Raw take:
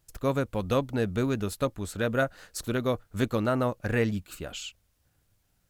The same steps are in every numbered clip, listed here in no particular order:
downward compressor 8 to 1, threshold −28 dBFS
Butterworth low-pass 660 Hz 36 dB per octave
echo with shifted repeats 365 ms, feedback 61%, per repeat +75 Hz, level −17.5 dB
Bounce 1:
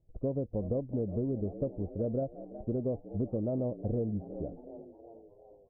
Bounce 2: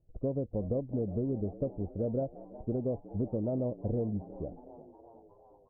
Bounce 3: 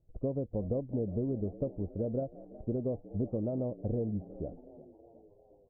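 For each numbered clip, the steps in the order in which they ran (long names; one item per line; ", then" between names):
echo with shifted repeats, then Butterworth low-pass, then downward compressor
Butterworth low-pass, then downward compressor, then echo with shifted repeats
downward compressor, then echo with shifted repeats, then Butterworth low-pass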